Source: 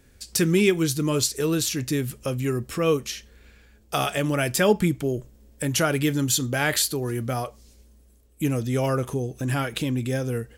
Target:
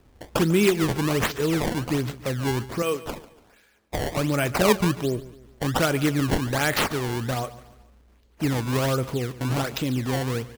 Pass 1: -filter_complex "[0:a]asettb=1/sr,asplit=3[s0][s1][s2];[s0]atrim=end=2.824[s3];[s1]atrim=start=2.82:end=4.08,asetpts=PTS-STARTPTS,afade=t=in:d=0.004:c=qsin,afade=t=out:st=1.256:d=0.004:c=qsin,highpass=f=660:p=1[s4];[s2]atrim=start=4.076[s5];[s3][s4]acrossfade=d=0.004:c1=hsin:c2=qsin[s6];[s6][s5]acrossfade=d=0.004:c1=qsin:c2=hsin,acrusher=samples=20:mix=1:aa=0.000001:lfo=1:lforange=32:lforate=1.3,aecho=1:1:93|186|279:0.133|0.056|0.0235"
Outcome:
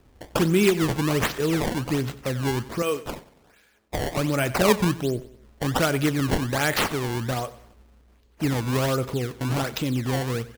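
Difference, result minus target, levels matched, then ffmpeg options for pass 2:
echo 51 ms early
-filter_complex "[0:a]asettb=1/sr,asplit=3[s0][s1][s2];[s0]atrim=end=2.824[s3];[s1]atrim=start=2.82:end=4.08,asetpts=PTS-STARTPTS,afade=t=in:d=0.004:c=qsin,afade=t=out:st=1.256:d=0.004:c=qsin,highpass=f=660:p=1[s4];[s2]atrim=start=4.076[s5];[s3][s4]acrossfade=d=0.004:c1=hsin:c2=qsin[s6];[s6][s5]acrossfade=d=0.004:c1=qsin:c2=hsin,acrusher=samples=20:mix=1:aa=0.000001:lfo=1:lforange=32:lforate=1.3,aecho=1:1:144|288|432:0.133|0.056|0.0235"

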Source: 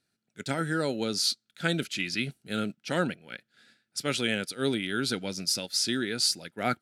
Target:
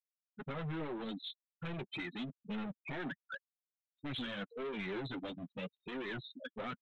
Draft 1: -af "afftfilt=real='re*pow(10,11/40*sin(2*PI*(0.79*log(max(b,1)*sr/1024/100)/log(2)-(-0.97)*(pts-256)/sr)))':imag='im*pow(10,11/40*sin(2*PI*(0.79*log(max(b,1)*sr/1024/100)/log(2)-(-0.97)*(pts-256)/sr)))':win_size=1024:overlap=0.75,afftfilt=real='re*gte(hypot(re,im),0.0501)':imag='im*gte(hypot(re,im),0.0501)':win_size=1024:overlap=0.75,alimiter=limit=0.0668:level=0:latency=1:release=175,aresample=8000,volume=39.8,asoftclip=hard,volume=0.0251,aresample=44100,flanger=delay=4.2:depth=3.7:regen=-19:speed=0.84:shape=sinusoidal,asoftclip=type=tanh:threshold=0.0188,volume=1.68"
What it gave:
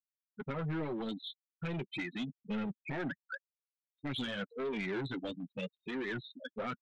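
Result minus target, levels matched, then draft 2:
overload inside the chain: distortion -5 dB
-af "afftfilt=real='re*pow(10,11/40*sin(2*PI*(0.79*log(max(b,1)*sr/1024/100)/log(2)-(-0.97)*(pts-256)/sr)))':imag='im*pow(10,11/40*sin(2*PI*(0.79*log(max(b,1)*sr/1024/100)/log(2)-(-0.97)*(pts-256)/sr)))':win_size=1024:overlap=0.75,afftfilt=real='re*gte(hypot(re,im),0.0501)':imag='im*gte(hypot(re,im),0.0501)':win_size=1024:overlap=0.75,alimiter=limit=0.0668:level=0:latency=1:release=175,aresample=8000,volume=89.1,asoftclip=hard,volume=0.0112,aresample=44100,flanger=delay=4.2:depth=3.7:regen=-19:speed=0.84:shape=sinusoidal,asoftclip=type=tanh:threshold=0.0188,volume=1.68"

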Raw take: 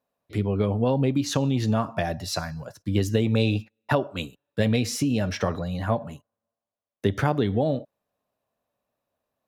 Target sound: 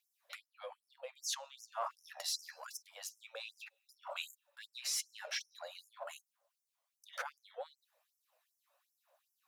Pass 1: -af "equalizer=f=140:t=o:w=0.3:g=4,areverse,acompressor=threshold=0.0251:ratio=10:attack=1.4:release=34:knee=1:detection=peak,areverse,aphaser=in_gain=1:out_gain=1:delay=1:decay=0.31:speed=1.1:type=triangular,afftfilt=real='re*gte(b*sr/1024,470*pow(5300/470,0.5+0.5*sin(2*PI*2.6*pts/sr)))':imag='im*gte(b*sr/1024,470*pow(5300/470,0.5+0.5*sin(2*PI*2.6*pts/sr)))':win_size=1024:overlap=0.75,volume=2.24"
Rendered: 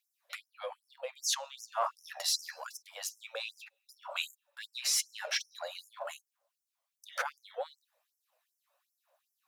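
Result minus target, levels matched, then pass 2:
compression: peak gain reduction -7 dB
-af "equalizer=f=140:t=o:w=0.3:g=4,areverse,acompressor=threshold=0.01:ratio=10:attack=1.4:release=34:knee=1:detection=peak,areverse,aphaser=in_gain=1:out_gain=1:delay=1:decay=0.31:speed=1.1:type=triangular,afftfilt=real='re*gte(b*sr/1024,470*pow(5300/470,0.5+0.5*sin(2*PI*2.6*pts/sr)))':imag='im*gte(b*sr/1024,470*pow(5300/470,0.5+0.5*sin(2*PI*2.6*pts/sr)))':win_size=1024:overlap=0.75,volume=2.24"

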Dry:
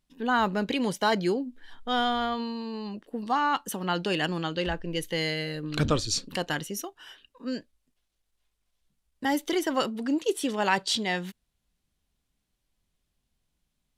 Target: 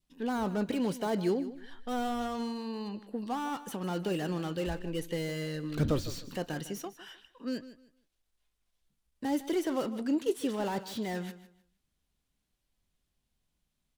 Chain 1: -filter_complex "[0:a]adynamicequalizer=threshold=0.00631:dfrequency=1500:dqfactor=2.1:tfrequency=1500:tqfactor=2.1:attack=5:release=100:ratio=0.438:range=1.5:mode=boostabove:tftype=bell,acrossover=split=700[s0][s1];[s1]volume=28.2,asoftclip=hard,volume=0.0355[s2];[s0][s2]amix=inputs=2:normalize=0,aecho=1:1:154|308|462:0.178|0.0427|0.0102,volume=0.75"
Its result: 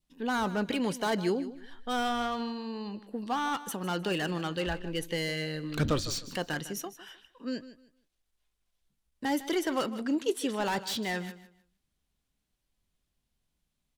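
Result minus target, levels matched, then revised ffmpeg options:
overload inside the chain: distortion -6 dB
-filter_complex "[0:a]adynamicequalizer=threshold=0.00631:dfrequency=1500:dqfactor=2.1:tfrequency=1500:tqfactor=2.1:attack=5:release=100:ratio=0.438:range=1.5:mode=boostabove:tftype=bell,acrossover=split=700[s0][s1];[s1]volume=106,asoftclip=hard,volume=0.00944[s2];[s0][s2]amix=inputs=2:normalize=0,aecho=1:1:154|308|462:0.178|0.0427|0.0102,volume=0.75"

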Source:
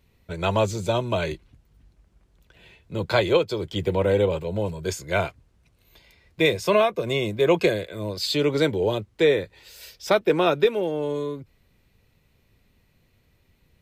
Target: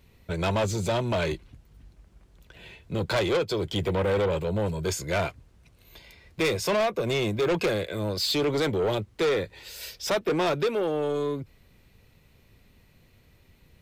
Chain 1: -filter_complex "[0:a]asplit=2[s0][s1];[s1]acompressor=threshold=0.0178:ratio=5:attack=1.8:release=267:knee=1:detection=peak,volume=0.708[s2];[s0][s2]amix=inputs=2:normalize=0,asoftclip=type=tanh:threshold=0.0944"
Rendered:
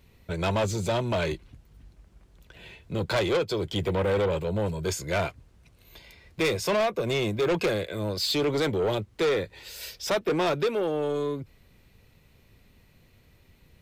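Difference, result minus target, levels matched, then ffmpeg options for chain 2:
compression: peak gain reduction +5 dB
-filter_complex "[0:a]asplit=2[s0][s1];[s1]acompressor=threshold=0.0355:ratio=5:attack=1.8:release=267:knee=1:detection=peak,volume=0.708[s2];[s0][s2]amix=inputs=2:normalize=0,asoftclip=type=tanh:threshold=0.0944"

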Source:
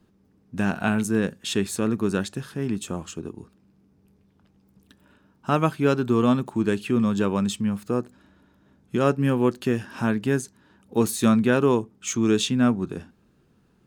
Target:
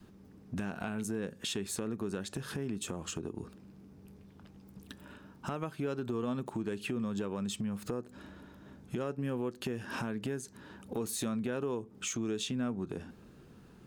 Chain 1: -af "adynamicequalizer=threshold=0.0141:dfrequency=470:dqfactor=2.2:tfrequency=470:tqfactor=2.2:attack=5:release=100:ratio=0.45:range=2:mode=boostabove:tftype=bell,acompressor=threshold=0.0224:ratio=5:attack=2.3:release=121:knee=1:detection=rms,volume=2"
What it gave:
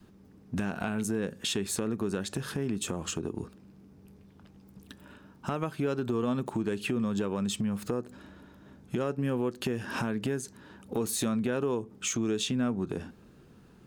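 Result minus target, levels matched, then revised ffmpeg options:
compression: peak gain reduction -5 dB
-af "adynamicequalizer=threshold=0.0141:dfrequency=470:dqfactor=2.2:tfrequency=470:tqfactor=2.2:attack=5:release=100:ratio=0.45:range=2:mode=boostabove:tftype=bell,acompressor=threshold=0.0106:ratio=5:attack=2.3:release=121:knee=1:detection=rms,volume=2"

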